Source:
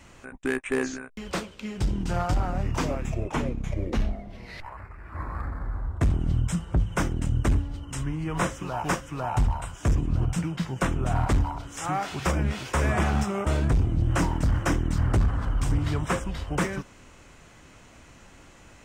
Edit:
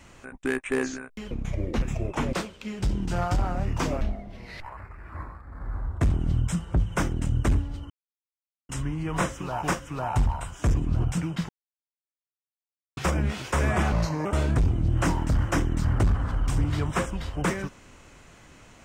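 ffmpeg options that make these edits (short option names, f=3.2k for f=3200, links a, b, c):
-filter_complex "[0:a]asplit=12[a][b][c][d][e][f][g][h][i][j][k][l];[a]atrim=end=1.312[m];[b]atrim=start=3.498:end=4.012[n];[c]atrim=start=2.988:end=3.502[o];[d]atrim=start=1.308:end=2.992[p];[e]atrim=start=4.008:end=5.4,asetpts=PTS-STARTPTS,afade=t=out:st=1.092:d=0.3:silence=0.188365[q];[f]atrim=start=5.4:end=5.45,asetpts=PTS-STARTPTS,volume=-14.5dB[r];[g]atrim=start=5.45:end=7.9,asetpts=PTS-STARTPTS,afade=t=in:d=0.3:silence=0.188365,afade=t=out:st=2.446:d=0.004:c=hsin,apad=pad_dur=0.79[s];[h]atrim=start=7.9:end=10.7,asetpts=PTS-STARTPTS,afade=t=in:d=0.004:c=hsin,afade=t=out:st=2.796:d=0.004:c=hsin[t];[i]atrim=start=10.7:end=12.18,asetpts=PTS-STARTPTS,volume=0[u];[j]atrim=start=12.18:end=13.134,asetpts=PTS-STARTPTS,afade=t=in:d=0.004:c=hsin[v];[k]atrim=start=13.13:end=13.39,asetpts=PTS-STARTPTS,asetrate=34398,aresample=44100[w];[l]atrim=start=13.386[x];[m][n]acrossfade=d=0.004:c1=hsin:c2=hsin[y];[y][o]acrossfade=d=0.004:c1=hsin:c2=hsin[z];[z][p]acrossfade=d=0.004:c1=hsin:c2=hsin[aa];[q][r][s][t][u][v]concat=n=6:v=0:a=1[ab];[aa][ab]acrossfade=d=0.004:c1=hsin:c2=hsin[ac];[ac][w]acrossfade=d=0.004:c1=hsin:c2=hsin[ad];[ad][x]acrossfade=d=0.004:c1=hsin:c2=hsin"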